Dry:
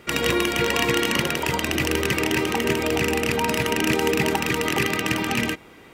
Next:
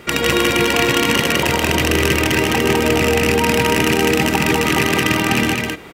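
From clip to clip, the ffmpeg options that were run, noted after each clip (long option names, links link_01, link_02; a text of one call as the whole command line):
ffmpeg -i in.wav -filter_complex "[0:a]acompressor=threshold=-28dB:ratio=1.5,asplit=2[link_01][link_02];[link_02]aecho=0:1:154.5|204.1:0.316|0.708[link_03];[link_01][link_03]amix=inputs=2:normalize=0,volume=8dB" out.wav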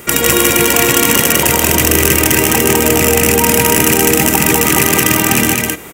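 ffmpeg -i in.wav -af "aexciter=amount=6:drive=3.1:freq=6200,acontrast=26,volume=-1dB" out.wav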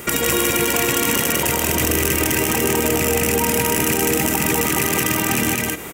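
ffmpeg -i in.wav -af "alimiter=limit=-10dB:level=0:latency=1:release=89" out.wav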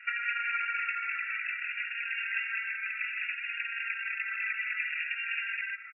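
ffmpeg -i in.wav -filter_complex "[0:a]afftfilt=real='re*between(b*sr/4096,1300,2800)':imag='im*between(b*sr/4096,1300,2800)':win_size=4096:overlap=0.75,asplit=2[link_01][link_02];[link_02]adelay=4.2,afreqshift=-0.62[link_03];[link_01][link_03]amix=inputs=2:normalize=1,volume=-3.5dB" out.wav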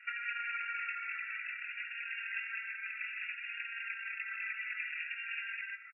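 ffmpeg -i in.wav -filter_complex "[0:a]asplit=2[link_01][link_02];[link_02]adelay=24,volume=-12.5dB[link_03];[link_01][link_03]amix=inputs=2:normalize=0,volume=-6.5dB" out.wav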